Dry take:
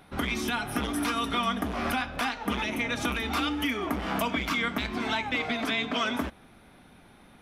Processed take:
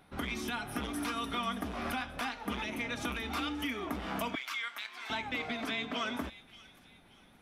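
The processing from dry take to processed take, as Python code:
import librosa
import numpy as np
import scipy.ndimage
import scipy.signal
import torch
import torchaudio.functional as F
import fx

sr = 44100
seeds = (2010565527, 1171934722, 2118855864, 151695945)

y = fx.highpass(x, sr, hz=1300.0, slope=12, at=(4.35, 5.1))
y = fx.echo_wet_highpass(y, sr, ms=579, feedback_pct=36, hz=2400.0, wet_db=-14.5)
y = y * 10.0 ** (-7.0 / 20.0)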